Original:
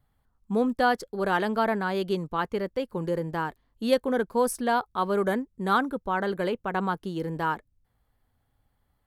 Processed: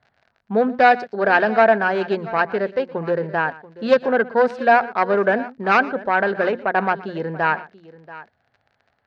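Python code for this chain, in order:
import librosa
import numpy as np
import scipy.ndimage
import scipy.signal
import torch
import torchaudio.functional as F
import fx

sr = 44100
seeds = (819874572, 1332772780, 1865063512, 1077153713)

p1 = fx.self_delay(x, sr, depth_ms=0.19)
p2 = fx.dmg_crackle(p1, sr, seeds[0], per_s=46.0, level_db=-45.0)
p3 = fx.cabinet(p2, sr, low_hz=140.0, low_slope=12, high_hz=4100.0, hz=(180.0, 300.0, 670.0, 1100.0, 1600.0, 3300.0), db=(-4, -7, 8, -3, 8, -7))
p4 = fx.hum_notches(p3, sr, base_hz=60, count=4)
p5 = p4 + fx.echo_multitap(p4, sr, ms=(119, 684), db=(-19.5, -18.0), dry=0)
y = p5 * librosa.db_to_amplitude(7.0)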